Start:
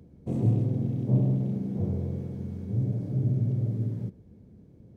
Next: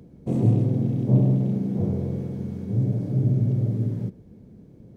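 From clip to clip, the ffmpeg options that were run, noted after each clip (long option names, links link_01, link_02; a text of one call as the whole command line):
ffmpeg -i in.wav -af "equalizer=frequency=80:width_type=o:width=0.61:gain=-7.5,volume=6dB" out.wav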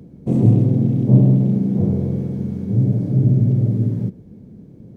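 ffmpeg -i in.wav -af "equalizer=frequency=190:width=0.57:gain=5.5,volume=2dB" out.wav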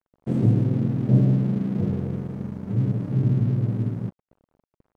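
ffmpeg -i in.wav -af "aeval=exprs='sgn(val(0))*max(abs(val(0))-0.0188,0)':channel_layout=same,volume=-5.5dB" out.wav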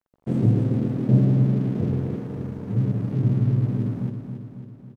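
ffmpeg -i in.wav -af "aecho=1:1:274|548|822|1096|1370|1644|1918:0.398|0.231|0.134|0.0777|0.0451|0.0261|0.0152" out.wav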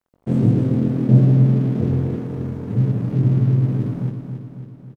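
ffmpeg -i in.wav -filter_complex "[0:a]asplit=2[link_01][link_02];[link_02]adelay=23,volume=-8dB[link_03];[link_01][link_03]amix=inputs=2:normalize=0,volume=3dB" out.wav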